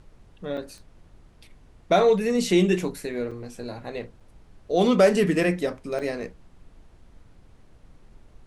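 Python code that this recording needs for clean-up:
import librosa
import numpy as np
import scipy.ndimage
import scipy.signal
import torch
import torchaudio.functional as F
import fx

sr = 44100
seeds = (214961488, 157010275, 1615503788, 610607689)

y = fx.fix_declick_ar(x, sr, threshold=10.0)
y = fx.fix_interpolate(y, sr, at_s=(0.57, 3.31, 4.2, 5.99), length_ms=5.0)
y = fx.noise_reduce(y, sr, print_start_s=0.9, print_end_s=1.4, reduce_db=16.0)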